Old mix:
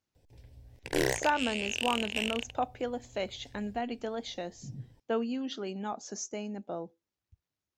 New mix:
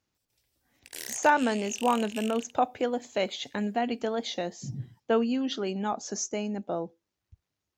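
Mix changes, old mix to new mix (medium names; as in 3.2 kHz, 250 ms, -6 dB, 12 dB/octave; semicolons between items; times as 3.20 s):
speech +6.0 dB; background: add pre-emphasis filter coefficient 0.97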